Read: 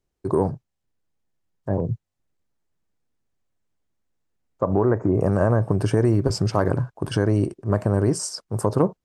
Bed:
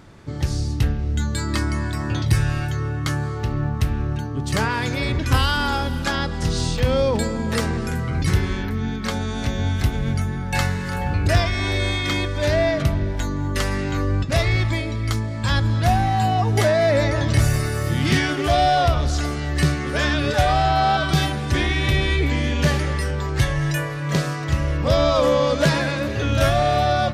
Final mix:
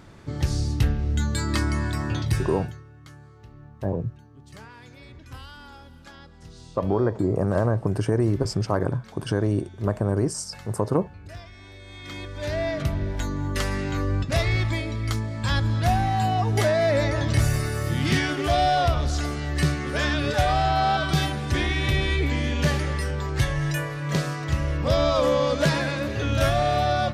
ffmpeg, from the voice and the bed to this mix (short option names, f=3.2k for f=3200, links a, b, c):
-filter_complex "[0:a]adelay=2150,volume=-3dB[a];[1:a]volume=18dB,afade=t=out:st=1.96:d=0.88:silence=0.0841395,afade=t=in:st=11.86:d=1.33:silence=0.105925[b];[a][b]amix=inputs=2:normalize=0"